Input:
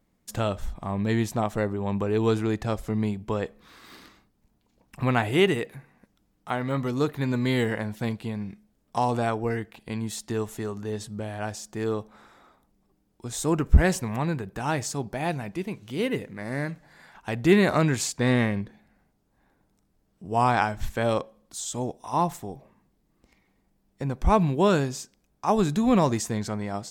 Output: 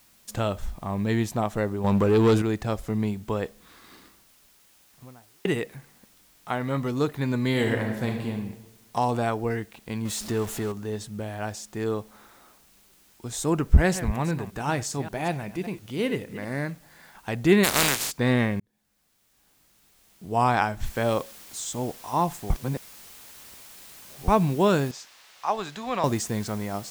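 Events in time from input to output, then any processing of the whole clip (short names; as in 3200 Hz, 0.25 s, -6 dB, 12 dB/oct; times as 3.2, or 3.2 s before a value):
1.84–2.42 sample leveller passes 2
3.39–5.45 studio fade out
7.5–8.31 reverb throw, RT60 1.1 s, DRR 2 dB
10.05–10.72 zero-crossing step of -33 dBFS
13.73–16.61 reverse delay 0.194 s, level -12.5 dB
17.63–18.1 spectral contrast lowered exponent 0.25
18.6–20.33 fade in
20.86 noise floor step -59 dB -47 dB
22.5–24.28 reverse
24.91–26.04 three-band isolator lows -17 dB, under 570 Hz, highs -15 dB, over 5800 Hz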